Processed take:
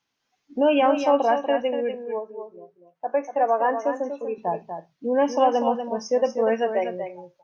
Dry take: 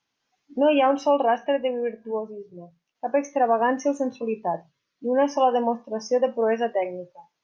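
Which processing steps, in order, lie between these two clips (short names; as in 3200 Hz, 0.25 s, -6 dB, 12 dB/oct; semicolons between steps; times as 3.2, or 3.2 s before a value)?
2.03–4.38 three-band isolator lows -21 dB, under 310 Hz, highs -13 dB, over 2100 Hz; echo 0.241 s -8 dB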